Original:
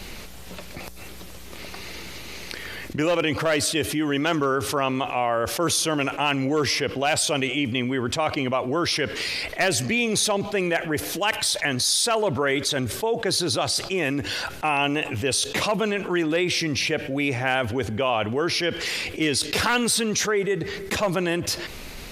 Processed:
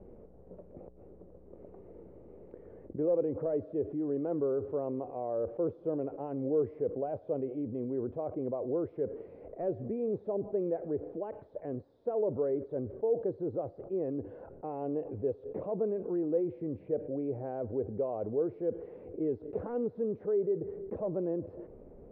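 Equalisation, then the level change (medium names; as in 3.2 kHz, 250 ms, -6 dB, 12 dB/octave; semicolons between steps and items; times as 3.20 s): four-pole ladder low-pass 570 Hz, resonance 50%; tilt EQ +2.5 dB/octave; bass shelf 170 Hz +6 dB; 0.0 dB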